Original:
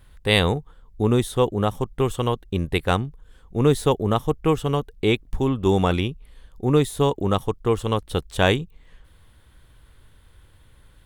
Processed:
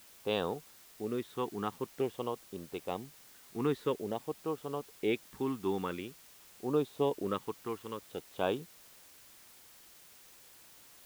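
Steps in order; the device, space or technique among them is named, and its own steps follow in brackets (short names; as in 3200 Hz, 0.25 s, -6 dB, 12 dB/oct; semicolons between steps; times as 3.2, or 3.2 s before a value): shortwave radio (BPF 250–2500 Hz; tremolo 0.56 Hz, depth 52%; LFO notch sine 0.49 Hz 550–2200 Hz; white noise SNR 20 dB); gain -8 dB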